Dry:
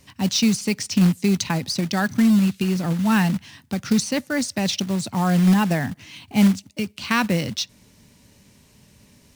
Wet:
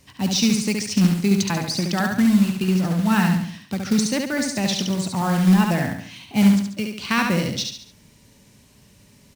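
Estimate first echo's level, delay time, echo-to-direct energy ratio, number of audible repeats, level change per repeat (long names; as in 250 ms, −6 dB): −4.0 dB, 70 ms, −3.0 dB, 4, −7.0 dB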